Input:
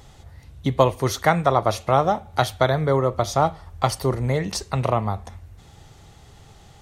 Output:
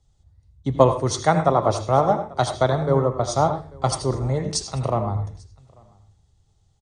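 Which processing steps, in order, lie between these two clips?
Butterworth low-pass 9,600 Hz 96 dB per octave
parametric band 2,300 Hz −8.5 dB 1.5 octaves
single-tap delay 842 ms −17.5 dB
on a send at −7 dB: convolution reverb RT60 0.40 s, pre-delay 76 ms
on the sum: multiband upward and downward expander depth 70%

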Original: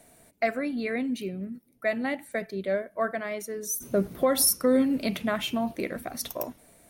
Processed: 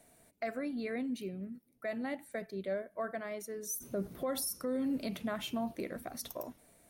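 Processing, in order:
dynamic equaliser 2,400 Hz, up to −4 dB, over −46 dBFS, Q 1.3
brickwall limiter −20.5 dBFS, peak gain reduction 9.5 dB
level −7 dB

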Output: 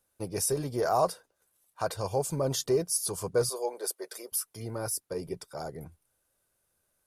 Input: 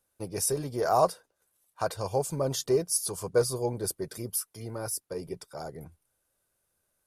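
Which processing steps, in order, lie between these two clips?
0:03.49–0:04.32: high-pass filter 440 Hz 24 dB per octave
in parallel at +1 dB: brickwall limiter −22 dBFS, peak gain reduction 11 dB
on the sum: level −5.5 dB

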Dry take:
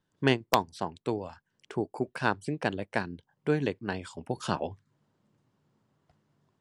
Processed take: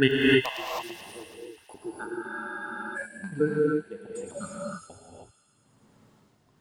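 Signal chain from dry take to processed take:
slices reordered back to front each 83 ms, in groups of 4
noise reduction from a noise print of the clip's start 22 dB
in parallel at −1 dB: upward compression, threshold −33 dBFS
on the sum: amplitude tremolo 1.2 Hz, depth 83%
delay with a high-pass on its return 110 ms, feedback 76%, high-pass 3,100 Hz, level −6.5 dB
reverb whose tail is shaped and stops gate 340 ms rising, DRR −5 dB
frozen spectrum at 0:02.31, 0.65 s
level −1.5 dB

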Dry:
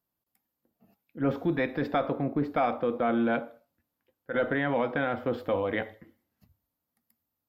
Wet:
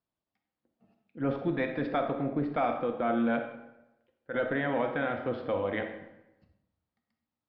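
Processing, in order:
low-pass filter 4,400 Hz 24 dB per octave
convolution reverb RT60 0.95 s, pre-delay 5 ms, DRR 6 dB
level −3 dB

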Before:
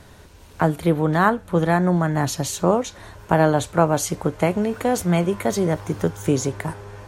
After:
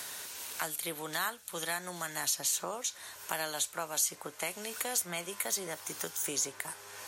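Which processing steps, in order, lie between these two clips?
first difference
multiband upward and downward compressor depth 70%
level +1.5 dB

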